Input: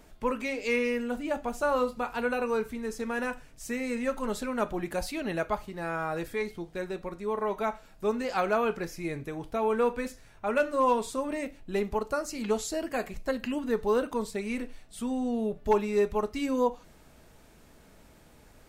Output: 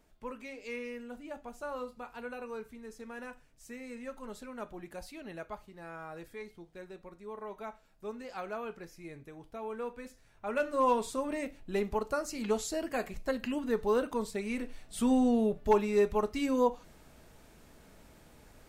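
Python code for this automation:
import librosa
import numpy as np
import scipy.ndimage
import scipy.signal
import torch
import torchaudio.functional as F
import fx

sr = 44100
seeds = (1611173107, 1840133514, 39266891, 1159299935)

y = fx.gain(x, sr, db=fx.line((9.99, -12.5), (10.83, -2.5), (14.59, -2.5), (15.13, 5.5), (15.66, -1.0)))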